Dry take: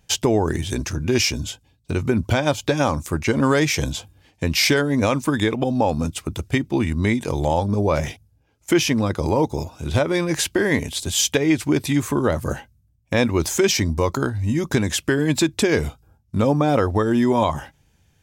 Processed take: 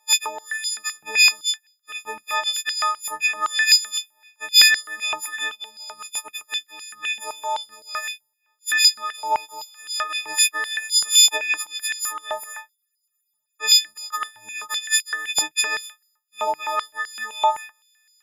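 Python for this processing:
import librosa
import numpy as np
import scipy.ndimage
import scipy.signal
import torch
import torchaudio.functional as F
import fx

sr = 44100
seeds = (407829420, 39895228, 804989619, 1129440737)

y = fx.freq_snap(x, sr, grid_st=6)
y = fx.spec_freeze(y, sr, seeds[0], at_s=12.78, hold_s=0.84)
y = fx.filter_held_highpass(y, sr, hz=7.8, low_hz=830.0, high_hz=4800.0)
y = F.gain(torch.from_numpy(y), -9.0).numpy()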